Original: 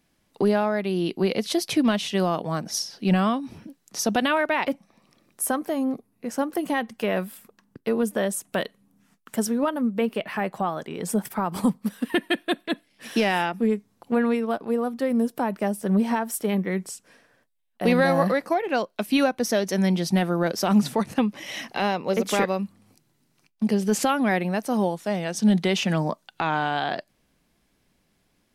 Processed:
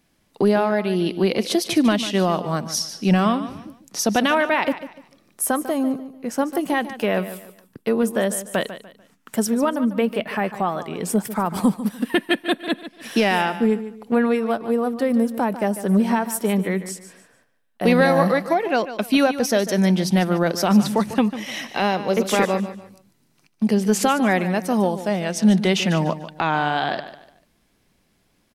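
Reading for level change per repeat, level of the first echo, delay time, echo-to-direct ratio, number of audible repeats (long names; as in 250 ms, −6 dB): −10.0 dB, −13.0 dB, 147 ms, −12.5 dB, 3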